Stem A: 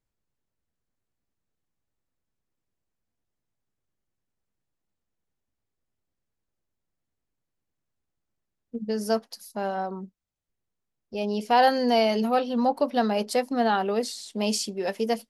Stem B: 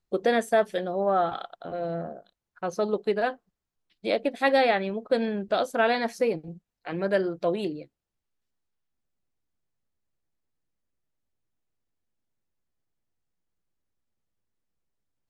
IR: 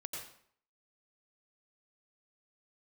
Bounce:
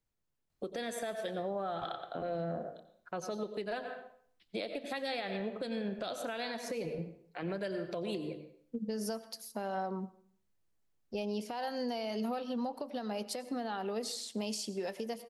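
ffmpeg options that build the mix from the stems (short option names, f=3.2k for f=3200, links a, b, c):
-filter_complex "[0:a]acompressor=threshold=-28dB:ratio=6,volume=-3dB,asplit=2[a][b];[b]volume=-13dB[c];[1:a]adelay=500,volume=-3dB,asplit=2[d][e];[e]volume=-4.5dB[f];[2:a]atrim=start_sample=2205[g];[c][f]amix=inputs=2:normalize=0[h];[h][g]afir=irnorm=-1:irlink=0[i];[a][d][i]amix=inputs=3:normalize=0,acrossover=split=140|3000[j][k][l];[k]acompressor=threshold=-31dB:ratio=6[m];[j][m][l]amix=inputs=3:normalize=0,alimiter=level_in=3.5dB:limit=-24dB:level=0:latency=1:release=181,volume=-3.5dB"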